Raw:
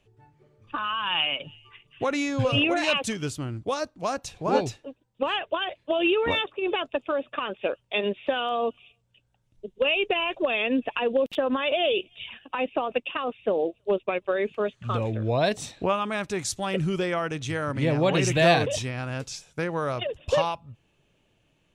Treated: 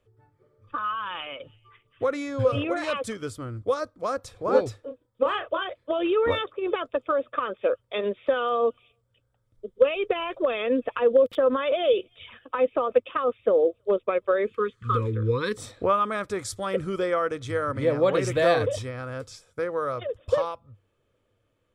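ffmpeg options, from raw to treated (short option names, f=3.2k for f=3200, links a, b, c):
-filter_complex "[0:a]asettb=1/sr,asplit=3[a][b][c];[a]atrim=end=4.804[d];[b]atrim=start=4.8:end=5.67,asetpts=PTS-STARTPTS,afade=t=in:d=0.004:c=qsin,afade=t=out:st=0.866:d=0.004:c=qsin,asplit=2[e][f];[f]adelay=31,volume=-7dB[g];[e][g]amix=inputs=2:normalize=0,atrim=end_sample=38367[h];[c]atrim=start=5.666[i];[d][h]acrossfade=d=0.004:c1=hsin:c2=qsin[j];[j][i]acrossfade=d=0.004:c1=qsin:c2=hsin,asettb=1/sr,asplit=3[k][l][m];[k]atrim=end=14.474[n];[l]atrim=start=14.47:end=15.58,asetpts=PTS-STARTPTS,afade=t=in:d=0.004:c=qsin,afade=t=out:st=1.106:d=0.004:c=qsin,asuperstop=centerf=690:order=8:qfactor=1.5[o];[m]atrim=start=15.576[p];[n][o]acrossfade=d=0.004:c1=hsin:c2=qsin[q];[q][p]acrossfade=d=0.004:c1=qsin:c2=hsin,equalizer=f=100:t=o:w=0.33:g=9,equalizer=f=160:t=o:w=0.33:g=-11,equalizer=f=500:t=o:w=0.33:g=10,equalizer=f=800:t=o:w=0.33:g=-5,equalizer=f=1.25k:t=o:w=0.33:g=9,equalizer=f=2.5k:t=o:w=0.33:g=-4,equalizer=f=4k:t=o:w=0.33:g=-4,equalizer=f=6.3k:t=o:w=0.33:g=-7,dynaudnorm=f=230:g=31:m=5.5dB,bandreject=f=2.8k:w=6.9,volume=-5dB"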